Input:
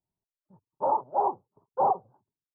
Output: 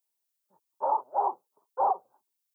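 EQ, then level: HPF 310 Hz 12 dB/oct; tilt +4 dB/oct; 0.0 dB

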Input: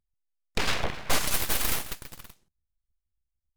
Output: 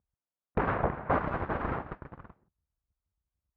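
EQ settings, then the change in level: HPF 53 Hz; LPF 1400 Hz 24 dB/oct; +4.0 dB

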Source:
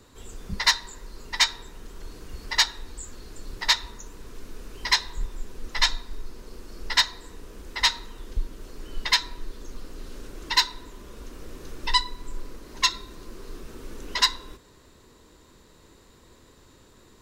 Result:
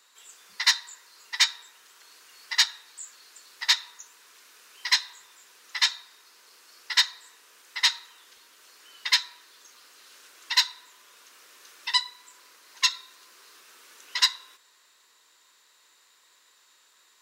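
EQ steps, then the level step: HPF 1400 Hz 12 dB/oct; 0.0 dB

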